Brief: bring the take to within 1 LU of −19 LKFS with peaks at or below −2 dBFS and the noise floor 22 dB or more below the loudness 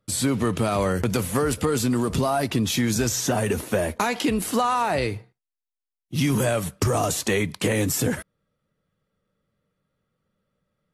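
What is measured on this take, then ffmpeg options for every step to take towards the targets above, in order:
integrated loudness −23.5 LKFS; sample peak −8.5 dBFS; target loudness −19.0 LKFS
→ -af "volume=4.5dB"

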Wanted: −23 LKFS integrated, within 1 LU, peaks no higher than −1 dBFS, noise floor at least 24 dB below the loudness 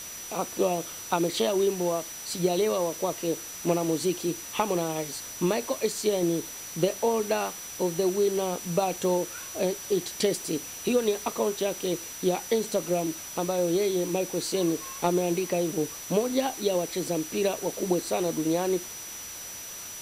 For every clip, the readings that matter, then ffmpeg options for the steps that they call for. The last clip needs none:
interfering tone 5,900 Hz; level of the tone −40 dBFS; background noise floor −40 dBFS; target noise floor −52 dBFS; integrated loudness −28.0 LKFS; sample peak −11.5 dBFS; target loudness −23.0 LKFS
→ -af "bandreject=frequency=5900:width=30"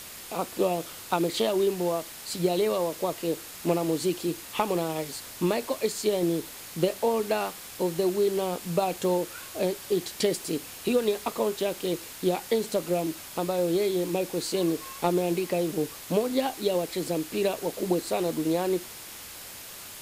interfering tone none found; background noise floor −43 dBFS; target noise floor −52 dBFS
→ -af "afftdn=noise_reduction=9:noise_floor=-43"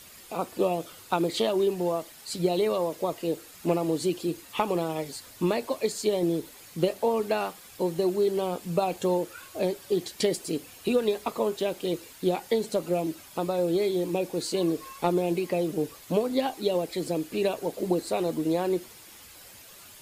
background noise floor −49 dBFS; target noise floor −53 dBFS
→ -af "afftdn=noise_reduction=6:noise_floor=-49"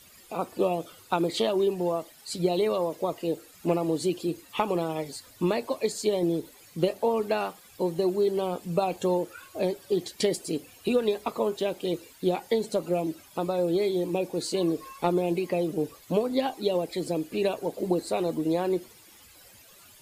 background noise floor −54 dBFS; integrated loudness −28.5 LKFS; sample peak −11.5 dBFS; target loudness −23.0 LKFS
→ -af "volume=5.5dB"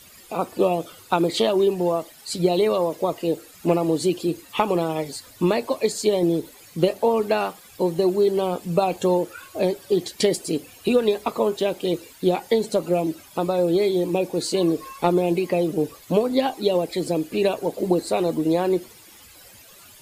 integrated loudness −23.0 LKFS; sample peak −6.0 dBFS; background noise floor −48 dBFS

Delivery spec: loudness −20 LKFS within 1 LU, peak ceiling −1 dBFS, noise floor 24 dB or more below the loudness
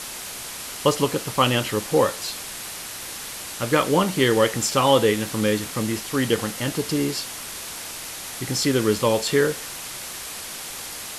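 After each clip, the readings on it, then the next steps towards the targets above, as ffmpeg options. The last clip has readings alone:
background noise floor −35 dBFS; target noise floor −48 dBFS; integrated loudness −23.5 LKFS; sample peak −4.0 dBFS; target loudness −20.0 LKFS
→ -af "afftdn=noise_reduction=13:noise_floor=-35"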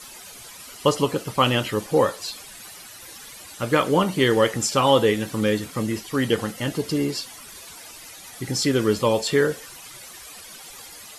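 background noise floor −42 dBFS; target noise floor −46 dBFS
→ -af "afftdn=noise_reduction=6:noise_floor=-42"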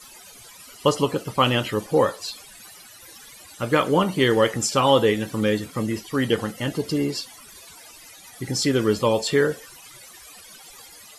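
background noise floor −46 dBFS; target noise floor −47 dBFS
→ -af "afftdn=noise_reduction=6:noise_floor=-46"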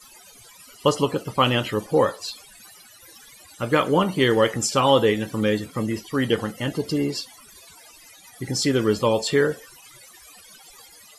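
background noise floor −49 dBFS; integrated loudness −22.5 LKFS; sample peak −4.0 dBFS; target loudness −20.0 LKFS
→ -af "volume=2.5dB"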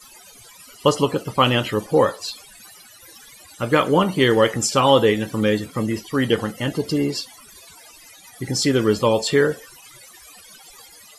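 integrated loudness −20.0 LKFS; sample peak −1.5 dBFS; background noise floor −47 dBFS

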